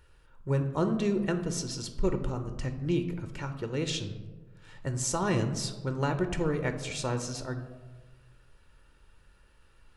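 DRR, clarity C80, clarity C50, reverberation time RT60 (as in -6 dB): 7.0 dB, 12.0 dB, 10.0 dB, 1.3 s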